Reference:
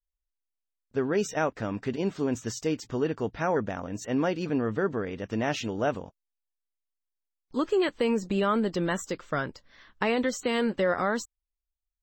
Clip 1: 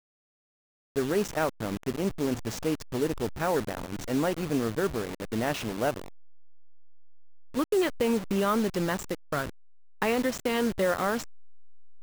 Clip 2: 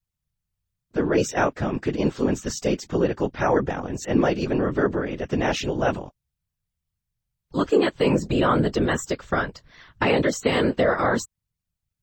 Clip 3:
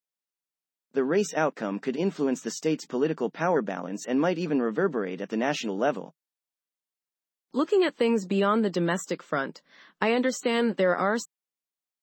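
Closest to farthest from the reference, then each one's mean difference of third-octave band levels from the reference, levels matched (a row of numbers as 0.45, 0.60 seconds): 3, 2, 1; 2.0, 3.5, 9.0 decibels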